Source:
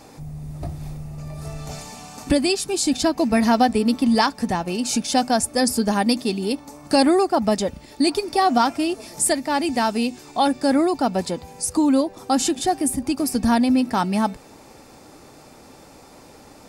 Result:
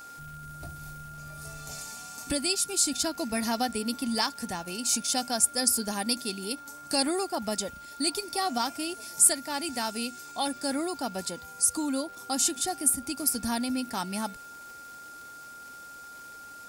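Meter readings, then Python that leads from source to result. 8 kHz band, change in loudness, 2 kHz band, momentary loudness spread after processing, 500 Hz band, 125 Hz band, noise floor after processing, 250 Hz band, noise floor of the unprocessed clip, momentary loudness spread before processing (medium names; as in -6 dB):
+1.0 dB, -7.0 dB, -8.0 dB, 20 LU, -12.5 dB, -13.0 dB, -46 dBFS, -13.0 dB, -47 dBFS, 16 LU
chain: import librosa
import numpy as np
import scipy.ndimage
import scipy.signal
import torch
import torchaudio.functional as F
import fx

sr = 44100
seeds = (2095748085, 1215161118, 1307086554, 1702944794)

y = x + 10.0 ** (-33.0 / 20.0) * np.sin(2.0 * np.pi * 1400.0 * np.arange(len(x)) / sr)
y = F.preemphasis(torch.from_numpy(y), 0.8).numpy()
y = fx.dmg_crackle(y, sr, seeds[0], per_s=420.0, level_db=-45.0)
y = y * librosa.db_to_amplitude(1.0)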